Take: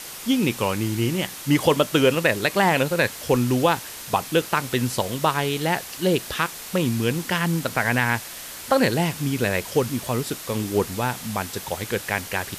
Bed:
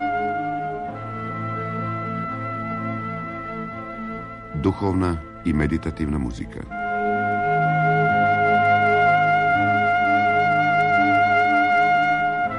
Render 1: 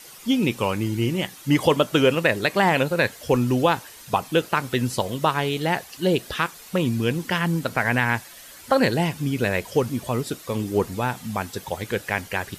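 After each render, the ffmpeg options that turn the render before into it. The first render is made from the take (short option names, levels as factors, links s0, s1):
-af "afftdn=nr=10:nf=-37"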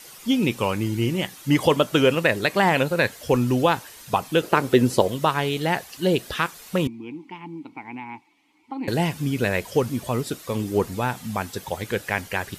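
-filter_complex "[0:a]asettb=1/sr,asplit=3[s0][s1][s2];[s0]atrim=end=4.434[s3];[s1]atrim=start=4.43:end=5.08,asetpts=PTS-STARTPTS,afade=t=in:d=0.004:c=qsin,afade=t=out:st=0.646:d=0.004:c=qsin,equalizer=f=400:w=0.83:g=10[s4];[s2]atrim=start=5.076[s5];[s3][s4]acrossfade=d=0.004:c1=hsin:c2=qsin[s6];[s6][s5]acrossfade=d=0.004:c1=qsin:c2=hsin,asettb=1/sr,asplit=3[s7][s8][s9];[s7]atrim=end=6.874[s10];[s8]atrim=start=6.87:end=8.88,asetpts=PTS-STARTPTS,afade=t=in:d=0.004:c=qsin,afade=t=out:st=2.006:d=0.004:c=qsin,asplit=3[s11][s12][s13];[s11]bandpass=f=300:t=q:w=8,volume=1[s14];[s12]bandpass=f=870:t=q:w=8,volume=0.501[s15];[s13]bandpass=f=2240:t=q:w=8,volume=0.355[s16];[s14][s15][s16]amix=inputs=3:normalize=0[s17];[s9]atrim=start=8.876[s18];[s10][s17]acrossfade=d=0.004:c1=hsin:c2=qsin[s19];[s19][s18]acrossfade=d=0.004:c1=qsin:c2=hsin"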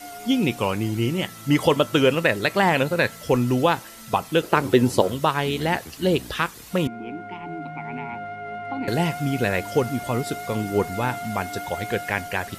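-filter_complex "[1:a]volume=0.158[s0];[0:a][s0]amix=inputs=2:normalize=0"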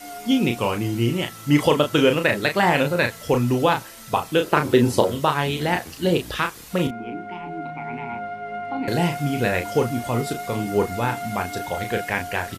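-filter_complex "[0:a]asplit=2[s0][s1];[s1]adelay=34,volume=0.501[s2];[s0][s2]amix=inputs=2:normalize=0"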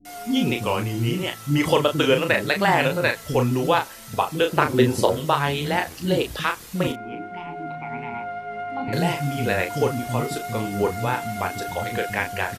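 -filter_complex "[0:a]acrossover=split=280[s0][s1];[s1]adelay=50[s2];[s0][s2]amix=inputs=2:normalize=0"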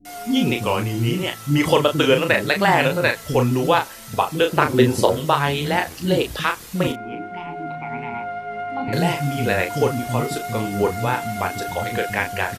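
-af "volume=1.33,alimiter=limit=0.891:level=0:latency=1"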